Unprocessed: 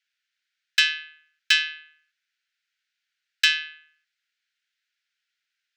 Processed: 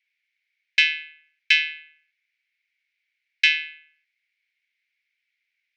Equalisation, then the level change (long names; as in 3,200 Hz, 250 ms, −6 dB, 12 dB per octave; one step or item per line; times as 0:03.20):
high-pass with resonance 2,200 Hz, resonance Q 8.9
low-pass filter 6,500 Hz 24 dB per octave
−6.5 dB